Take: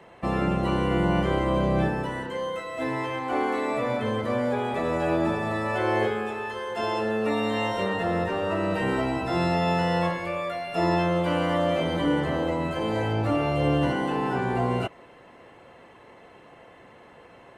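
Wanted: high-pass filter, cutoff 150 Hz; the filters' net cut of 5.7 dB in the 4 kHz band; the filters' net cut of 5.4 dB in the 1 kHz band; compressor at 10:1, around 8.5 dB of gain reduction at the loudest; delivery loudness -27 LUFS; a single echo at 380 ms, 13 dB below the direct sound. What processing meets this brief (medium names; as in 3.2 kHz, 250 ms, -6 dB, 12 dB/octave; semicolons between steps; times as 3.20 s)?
high-pass 150 Hz; peaking EQ 1 kHz -7 dB; peaking EQ 4 kHz -8 dB; compression 10:1, threshold -30 dBFS; delay 380 ms -13 dB; trim +7 dB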